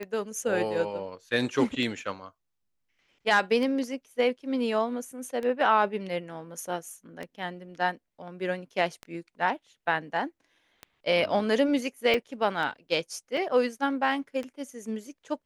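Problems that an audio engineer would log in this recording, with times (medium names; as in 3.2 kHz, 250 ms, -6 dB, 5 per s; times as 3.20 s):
tick 33 1/3 rpm -22 dBFS
12.14 s: dropout 3.3 ms
13.37 s: dropout 2.7 ms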